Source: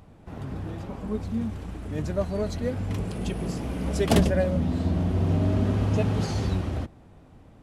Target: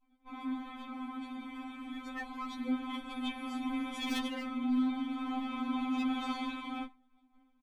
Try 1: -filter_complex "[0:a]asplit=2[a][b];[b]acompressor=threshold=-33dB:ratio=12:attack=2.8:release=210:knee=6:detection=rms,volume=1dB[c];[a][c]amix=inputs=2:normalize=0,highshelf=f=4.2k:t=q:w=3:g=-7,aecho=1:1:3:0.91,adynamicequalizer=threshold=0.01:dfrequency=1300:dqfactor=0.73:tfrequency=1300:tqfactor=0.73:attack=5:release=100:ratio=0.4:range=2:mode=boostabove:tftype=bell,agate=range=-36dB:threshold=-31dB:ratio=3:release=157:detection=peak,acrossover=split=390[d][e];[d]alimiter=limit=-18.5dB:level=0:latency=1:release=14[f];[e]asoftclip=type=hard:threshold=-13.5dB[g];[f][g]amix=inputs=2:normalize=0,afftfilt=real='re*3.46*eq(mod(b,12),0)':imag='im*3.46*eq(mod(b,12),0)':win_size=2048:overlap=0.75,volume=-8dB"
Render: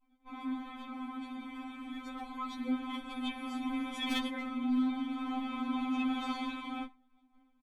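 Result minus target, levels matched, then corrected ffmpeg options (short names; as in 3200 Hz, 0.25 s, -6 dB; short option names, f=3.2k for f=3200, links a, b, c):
hard clip: distortion -7 dB
-filter_complex "[0:a]asplit=2[a][b];[b]acompressor=threshold=-33dB:ratio=12:attack=2.8:release=210:knee=6:detection=rms,volume=1dB[c];[a][c]amix=inputs=2:normalize=0,highshelf=f=4.2k:t=q:w=3:g=-7,aecho=1:1:3:0.91,adynamicequalizer=threshold=0.01:dfrequency=1300:dqfactor=0.73:tfrequency=1300:tqfactor=0.73:attack=5:release=100:ratio=0.4:range=2:mode=boostabove:tftype=bell,agate=range=-36dB:threshold=-31dB:ratio=3:release=157:detection=peak,acrossover=split=390[d][e];[d]alimiter=limit=-18.5dB:level=0:latency=1:release=14[f];[e]asoftclip=type=hard:threshold=-19.5dB[g];[f][g]amix=inputs=2:normalize=0,afftfilt=real='re*3.46*eq(mod(b,12),0)':imag='im*3.46*eq(mod(b,12),0)':win_size=2048:overlap=0.75,volume=-8dB"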